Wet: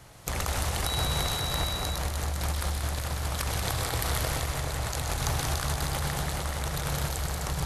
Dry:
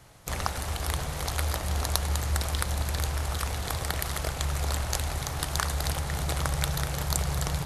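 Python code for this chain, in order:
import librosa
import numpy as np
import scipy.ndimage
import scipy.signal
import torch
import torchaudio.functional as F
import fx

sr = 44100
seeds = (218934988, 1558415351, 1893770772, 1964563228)

y = fx.over_compress(x, sr, threshold_db=-32.0, ratio=-1.0)
y = fx.echo_split(y, sr, split_hz=2600.0, low_ms=426, high_ms=126, feedback_pct=52, wet_db=-5)
y = fx.dmg_tone(y, sr, hz=3900.0, level_db=-32.0, at=(0.85, 1.77), fade=0.02)
y = y + 10.0 ** (-5.5 / 20.0) * np.pad(y, (int(183 * sr / 1000.0), 0))[:len(y)]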